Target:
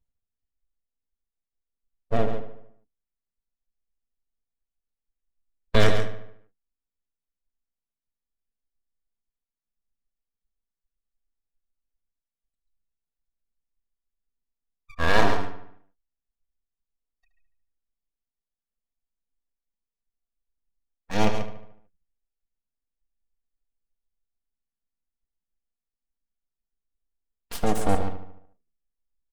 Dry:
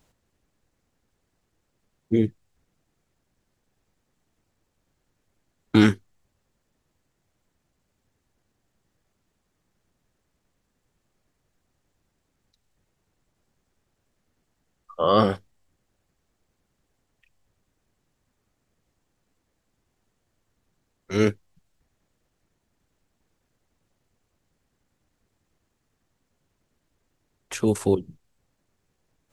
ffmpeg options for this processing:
ffmpeg -i in.wav -filter_complex "[0:a]afftdn=noise_reduction=29:noise_floor=-51,asplit=2[link_01][link_02];[link_02]aecho=0:1:137:0.355[link_03];[link_01][link_03]amix=inputs=2:normalize=0,aeval=exprs='abs(val(0))':channel_layout=same,aecho=1:1:4.3:0.36,asplit=2[link_04][link_05];[link_05]adelay=74,lowpass=frequency=3900:poles=1,volume=-10dB,asplit=2[link_06][link_07];[link_07]adelay=74,lowpass=frequency=3900:poles=1,volume=0.54,asplit=2[link_08][link_09];[link_09]adelay=74,lowpass=frequency=3900:poles=1,volume=0.54,asplit=2[link_10][link_11];[link_11]adelay=74,lowpass=frequency=3900:poles=1,volume=0.54,asplit=2[link_12][link_13];[link_13]adelay=74,lowpass=frequency=3900:poles=1,volume=0.54,asplit=2[link_14][link_15];[link_15]adelay=74,lowpass=frequency=3900:poles=1,volume=0.54[link_16];[link_06][link_08][link_10][link_12][link_14][link_16]amix=inputs=6:normalize=0[link_17];[link_04][link_17]amix=inputs=2:normalize=0" out.wav

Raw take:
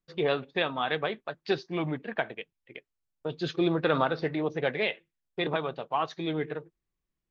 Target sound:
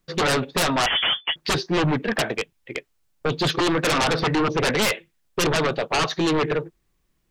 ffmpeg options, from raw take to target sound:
ffmpeg -i in.wav -filter_complex "[0:a]asettb=1/sr,asplit=3[link_01][link_02][link_03];[link_01]atrim=end=3.604[link_04];[link_02]atrim=start=3.6:end=4.08,asetpts=PTS-STARTPTS,afade=type=in:duration=0.004:curve=qsin,afade=type=out:start_time=0.476:duration=0.004:curve=qsin,lowshelf=frequency=400:gain=-8.5[link_05];[link_03]atrim=start=4.076[link_06];[link_04][link_05]acrossfade=duration=0.004:curve1=hsin:curve2=qsin[link_07];[link_07][link_06]acrossfade=duration=0.004:curve1=qsin:curve2=hsin,aeval=exprs='0.282*sin(PI/2*7.94*val(0)/0.282)':channel_layout=same,asettb=1/sr,asplit=3[link_08][link_09][link_10];[link_08]atrim=end=0.864[link_11];[link_09]atrim=start=0.86:end=1.36,asetpts=PTS-STARTPTS,afade=type=in:duration=0.004:curve=qsin,afade=type=out:start_time=0.496:duration=0.004:curve=qsin,lowpass=frequency=3000:width_type=q:width=0.5098,lowpass=frequency=3000:width_type=q:width=0.6013,lowpass=frequency=3000:width_type=q:width=0.9,lowpass=frequency=3000:width_type=q:width=2.563,afreqshift=-3500[link_12];[link_10]atrim=start=1.356[link_13];[link_11][link_12]acrossfade=duration=0.004:curve1=hsin:curve2=qsin[link_14];[link_14][link_13]acrossfade=duration=0.004:curve1=qsin:curve2=hsin,volume=-6dB" out.wav

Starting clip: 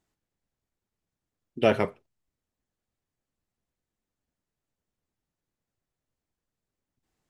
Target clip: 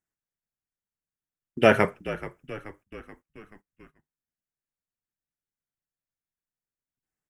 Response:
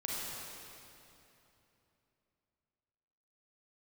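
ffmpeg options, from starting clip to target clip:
-filter_complex "[0:a]highshelf=frequency=2200:gain=7.5,asplit=6[link_01][link_02][link_03][link_04][link_05][link_06];[link_02]adelay=430,afreqshift=-51,volume=-15dB[link_07];[link_03]adelay=860,afreqshift=-102,volume=-20dB[link_08];[link_04]adelay=1290,afreqshift=-153,volume=-25.1dB[link_09];[link_05]adelay=1720,afreqshift=-204,volume=-30.1dB[link_10];[link_06]adelay=2150,afreqshift=-255,volume=-35.1dB[link_11];[link_01][link_07][link_08][link_09][link_10][link_11]amix=inputs=6:normalize=0,agate=range=-18dB:threshold=-56dB:ratio=16:detection=peak,equalizer=frequency=160:width_type=o:width=0.67:gain=3,equalizer=frequency=1600:width_type=o:width=0.67:gain=7,equalizer=frequency=4000:width_type=o:width=0.67:gain=-12,volume=2.5dB"

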